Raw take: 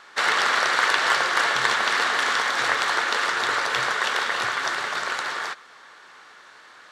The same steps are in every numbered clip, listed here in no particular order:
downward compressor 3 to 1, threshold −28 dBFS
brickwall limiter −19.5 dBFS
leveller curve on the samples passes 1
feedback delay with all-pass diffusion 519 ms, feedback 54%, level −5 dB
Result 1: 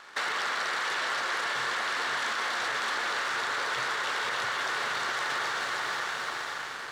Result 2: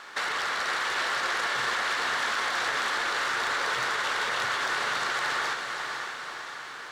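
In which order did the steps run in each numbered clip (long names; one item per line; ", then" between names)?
feedback delay with all-pass diffusion, then leveller curve on the samples, then brickwall limiter, then downward compressor
brickwall limiter, then leveller curve on the samples, then downward compressor, then feedback delay with all-pass diffusion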